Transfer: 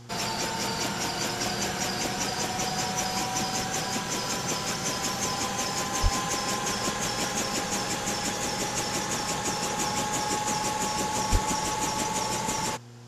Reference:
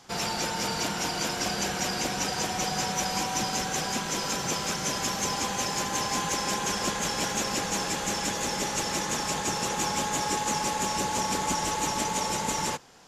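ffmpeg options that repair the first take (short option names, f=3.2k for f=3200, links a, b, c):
-filter_complex "[0:a]bandreject=f=119.1:t=h:w=4,bandreject=f=238.2:t=h:w=4,bandreject=f=357.3:t=h:w=4,bandreject=f=476.4:t=h:w=4,asplit=3[a][b][c];[a]afade=t=out:st=6.02:d=0.02[d];[b]highpass=f=140:w=0.5412,highpass=f=140:w=1.3066,afade=t=in:st=6.02:d=0.02,afade=t=out:st=6.14:d=0.02[e];[c]afade=t=in:st=6.14:d=0.02[f];[d][e][f]amix=inputs=3:normalize=0,asplit=3[g][h][i];[g]afade=t=out:st=11.31:d=0.02[j];[h]highpass=f=140:w=0.5412,highpass=f=140:w=1.3066,afade=t=in:st=11.31:d=0.02,afade=t=out:st=11.43:d=0.02[k];[i]afade=t=in:st=11.43:d=0.02[l];[j][k][l]amix=inputs=3:normalize=0"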